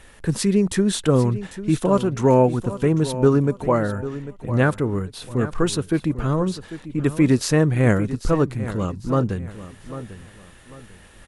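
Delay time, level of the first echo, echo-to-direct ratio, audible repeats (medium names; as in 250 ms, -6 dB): 796 ms, -13.5 dB, -13.0 dB, 3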